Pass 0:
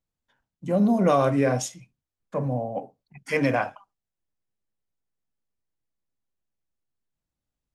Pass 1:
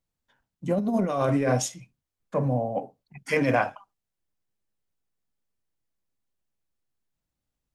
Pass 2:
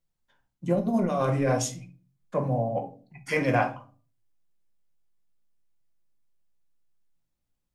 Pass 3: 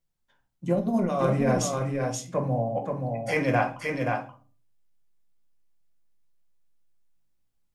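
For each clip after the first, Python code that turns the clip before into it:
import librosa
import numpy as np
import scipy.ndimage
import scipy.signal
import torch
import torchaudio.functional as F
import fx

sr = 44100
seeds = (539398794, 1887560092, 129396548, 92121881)

y1 = fx.over_compress(x, sr, threshold_db=-22.0, ratio=-0.5)
y2 = fx.room_shoebox(y1, sr, seeds[0], volume_m3=220.0, walls='furnished', distance_m=0.91)
y2 = y2 * 10.0 ** (-2.0 / 20.0)
y3 = y2 + 10.0 ** (-4.0 / 20.0) * np.pad(y2, (int(528 * sr / 1000.0), 0))[:len(y2)]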